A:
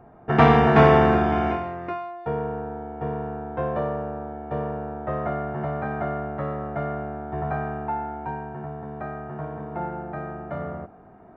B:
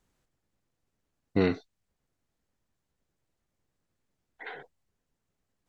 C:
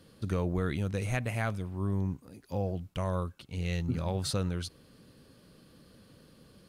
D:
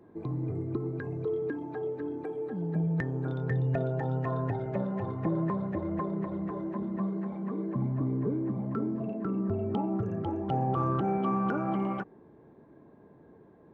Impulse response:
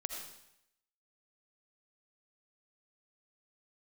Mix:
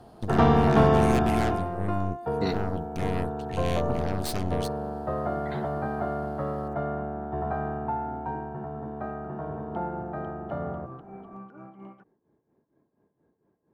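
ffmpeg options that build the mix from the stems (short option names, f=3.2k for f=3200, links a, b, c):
-filter_complex "[0:a]equalizer=f=2.2k:w=1.8:g=-10,bandreject=f=50:t=h:w=6,bandreject=f=100:t=h:w=6,bandreject=f=150:t=h:w=6,acrossover=split=260|3000[a][b][c];[b]acompressor=threshold=-27dB:ratio=1.5[d];[a][d][c]amix=inputs=3:normalize=0,volume=-0.5dB[e];[1:a]aexciter=amount=4.3:drive=6.5:freq=4.1k,adelay=1050,volume=-3.5dB[f];[2:a]aeval=exprs='0.141*(cos(1*acos(clip(val(0)/0.141,-1,1)))-cos(1*PI/2))+0.0398*(cos(8*acos(clip(val(0)/0.141,-1,1)))-cos(8*PI/2))':c=same,volume=-3dB,asplit=2[g][h];[3:a]tremolo=f=4.3:d=0.72,volume=-12.5dB[i];[h]apad=whole_len=296939[j];[f][j]sidechaincompress=threshold=-45dB:ratio=8:attack=16:release=174[k];[e][k][g][i]amix=inputs=4:normalize=0"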